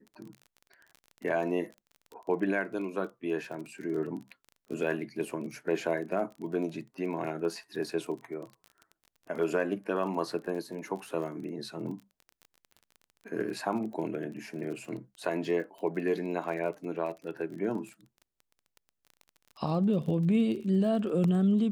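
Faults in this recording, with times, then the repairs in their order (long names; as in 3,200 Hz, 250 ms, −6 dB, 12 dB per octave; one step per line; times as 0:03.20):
surface crackle 29 per second −39 dBFS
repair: click removal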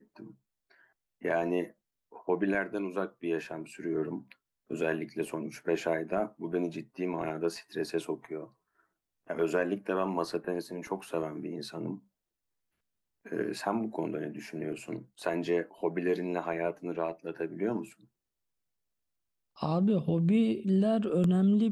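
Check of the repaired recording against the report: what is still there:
none of them is left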